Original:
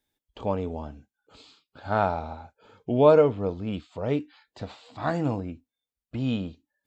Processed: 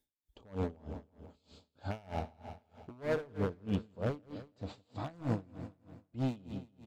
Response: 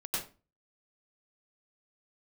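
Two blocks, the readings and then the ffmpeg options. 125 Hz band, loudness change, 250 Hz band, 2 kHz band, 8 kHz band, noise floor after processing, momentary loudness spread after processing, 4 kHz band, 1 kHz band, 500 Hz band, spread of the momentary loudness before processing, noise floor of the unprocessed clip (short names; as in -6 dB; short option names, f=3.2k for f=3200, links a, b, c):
-7.0 dB, -13.5 dB, -9.5 dB, -9.5 dB, n/a, -83 dBFS, 16 LU, -10.5 dB, -15.5 dB, -15.5 dB, 22 LU, under -85 dBFS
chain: -filter_complex "[0:a]equalizer=f=1.6k:t=o:w=2.7:g=-8,alimiter=limit=-21.5dB:level=0:latency=1:release=54,aeval=exprs='0.0531*(abs(mod(val(0)/0.0531+3,4)-2)-1)':c=same,asplit=2[a][b];[b]aecho=0:1:165|330|495|660|825|990|1155:0.316|0.187|0.11|0.0649|0.0383|0.0226|0.0133[c];[a][c]amix=inputs=2:normalize=0,aeval=exprs='val(0)*pow(10,-26*(0.5-0.5*cos(2*PI*3.2*n/s))/20)':c=same,volume=1dB"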